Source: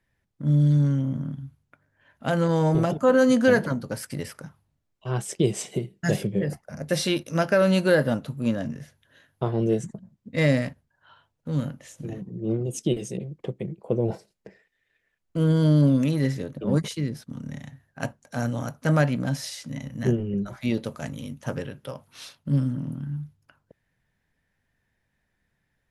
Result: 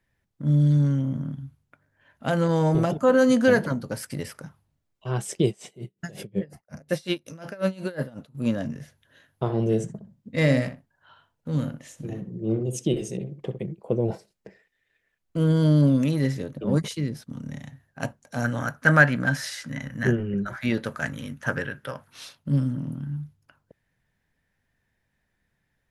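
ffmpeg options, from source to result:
-filter_complex "[0:a]asettb=1/sr,asplit=3[s0][s1][s2];[s0]atrim=end=5.484[s3];[s1]atrim=start=5.48:end=8.35,asetpts=PTS-STARTPTS,afade=t=in:d=0.004:c=qsin,afade=t=out:st=2.866:d=0.004:c=qsin,aeval=exprs='val(0)*pow(10,-26*(0.5-0.5*cos(2*PI*5.5*n/s))/20)':c=same[s4];[s2]atrim=start=8.346[s5];[s3][s4]acrossfade=d=0.004:c1=hsin:c2=qsin[s6];[s6][s5]acrossfade=d=0.004:c1=qsin:c2=hsin,asettb=1/sr,asplit=3[s7][s8][s9];[s7]atrim=end=9.434[s10];[s8]atrim=start=9.43:end=13.59,asetpts=PTS-STARTPTS,afade=t=in:d=0.004:c=qsin,afade=t=out:st=4.156:d=0.004:c=qsin,asplit=2[s11][s12];[s12]adelay=63,lowpass=f=2000:p=1,volume=0.355,asplit=2[s13][s14];[s14]adelay=63,lowpass=f=2000:p=1,volume=0.16[s15];[s11][s13][s15]amix=inputs=3:normalize=0,atrim=end_sample=183456[s16];[s9]atrim=start=13.586[s17];[s10][s16]acrossfade=d=0.004:c1=hsin:c2=qsin[s18];[s18][s17]acrossfade=d=0.004:c1=qsin:c2=hsin,asettb=1/sr,asplit=3[s19][s20][s21];[s19]atrim=end=18.444[s22];[s20]atrim=start=18.44:end=22.1,asetpts=PTS-STARTPTS,afade=t=in:d=0.004:c=qsin,afade=t=out:st=3.656:d=0.004:c=qsin,equalizer=f=1600:t=o:w=0.71:g=15[s23];[s21]atrim=start=22.096[s24];[s22][s23]acrossfade=d=0.004:c1=hsin:c2=qsin[s25];[s25][s24]acrossfade=d=0.004:c1=qsin:c2=hsin"

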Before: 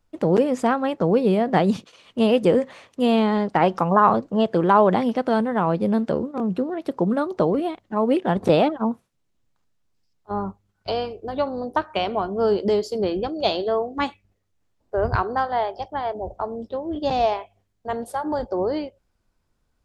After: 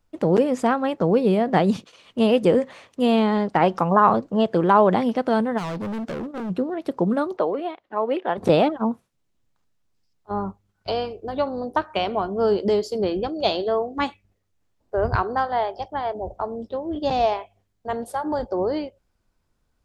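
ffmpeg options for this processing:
-filter_complex "[0:a]asplit=3[s0][s1][s2];[s0]afade=t=out:st=5.57:d=0.02[s3];[s1]asoftclip=type=hard:threshold=0.0447,afade=t=in:st=5.57:d=0.02,afade=t=out:st=6.49:d=0.02[s4];[s2]afade=t=in:st=6.49:d=0.02[s5];[s3][s4][s5]amix=inputs=3:normalize=0,asettb=1/sr,asplit=3[s6][s7][s8];[s6]atrim=end=7.374[s9];[s7]atrim=start=7.37:end=8.38,asetpts=PTS-STARTPTS,afade=t=in:d=0.004:c=qsin,afade=t=out:st=1.006:d=0.004:c=qsin,acrossover=split=350 4100:gain=0.1 1 0.141[s10][s11][s12];[s10][s11][s12]amix=inputs=3:normalize=0[s13];[s8]atrim=start=8.376[s14];[s9][s13]acrossfade=d=0.004:c1=hsin:c2=qsin[s15];[s15][s14]acrossfade=d=0.004:c1=qsin:c2=hsin"

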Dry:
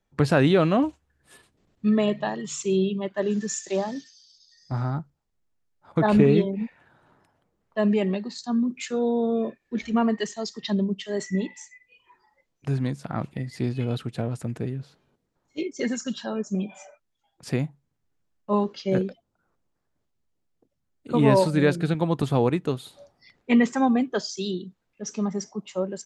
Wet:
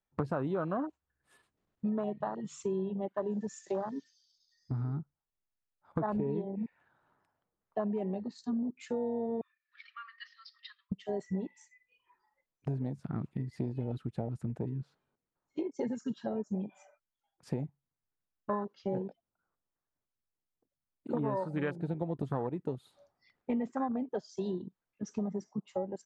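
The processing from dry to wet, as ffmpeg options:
-filter_complex "[0:a]asettb=1/sr,asplit=3[s0][s1][s2];[s0]atrim=end=9.414[s3];[s1]atrim=start=9.41:end=10.92,asetpts=PTS-STARTPTS,afade=t=in:d=0.004:c=qsin,afade=t=out:st=1.506:d=0.004:c=qsin,asuperpass=centerf=2500:order=20:qfactor=0.62[s4];[s2]atrim=start=10.916[s5];[s3][s4]acrossfade=d=0.004:c1=hsin:c2=qsin[s6];[s6][s5]acrossfade=d=0.004:c1=qsin:c2=hsin,afwtdn=0.0501,equalizer=f=1200:t=o:w=1.8:g=6.5,acompressor=threshold=0.0251:ratio=5"

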